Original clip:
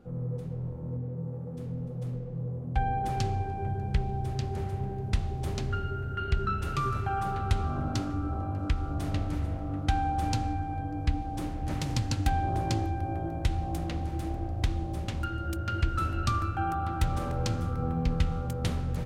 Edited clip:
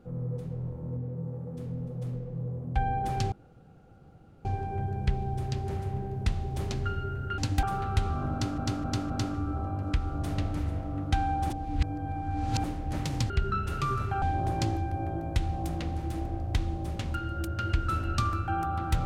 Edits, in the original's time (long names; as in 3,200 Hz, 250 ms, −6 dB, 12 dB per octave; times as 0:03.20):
0:03.32: splice in room tone 1.13 s
0:06.25–0:07.17: swap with 0:12.06–0:12.31
0:07.86–0:08.12: repeat, 4 plays
0:10.26–0:11.40: reverse